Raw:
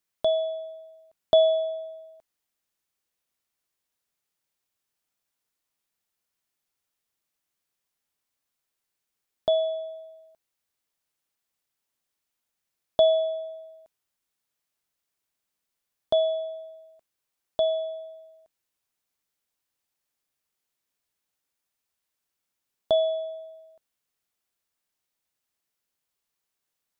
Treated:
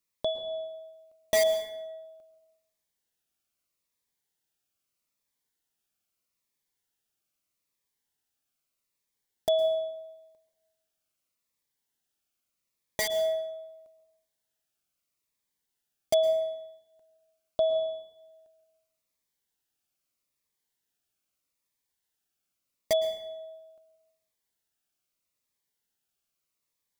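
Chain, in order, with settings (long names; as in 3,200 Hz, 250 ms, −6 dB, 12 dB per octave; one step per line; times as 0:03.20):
in parallel at −5.5 dB: wrap-around overflow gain 14.5 dB
on the sum: dense smooth reverb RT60 1 s, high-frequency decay 0.55×, pre-delay 100 ms, DRR 10 dB
phaser whose notches keep moving one way falling 0.79 Hz
level −4 dB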